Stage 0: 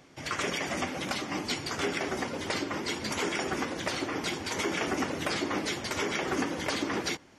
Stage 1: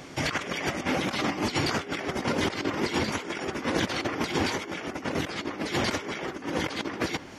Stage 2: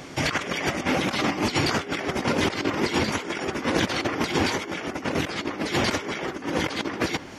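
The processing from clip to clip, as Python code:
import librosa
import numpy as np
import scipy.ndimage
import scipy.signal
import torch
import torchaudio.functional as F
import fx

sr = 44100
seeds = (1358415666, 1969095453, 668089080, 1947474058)

y1 = fx.dynamic_eq(x, sr, hz=8400.0, q=0.89, threshold_db=-52.0, ratio=4.0, max_db=-7)
y1 = fx.over_compress(y1, sr, threshold_db=-37.0, ratio=-0.5)
y1 = F.gain(torch.from_numpy(y1), 8.0).numpy()
y2 = fx.rattle_buzz(y1, sr, strikes_db=-31.0, level_db=-28.0)
y2 = F.gain(torch.from_numpy(y2), 3.5).numpy()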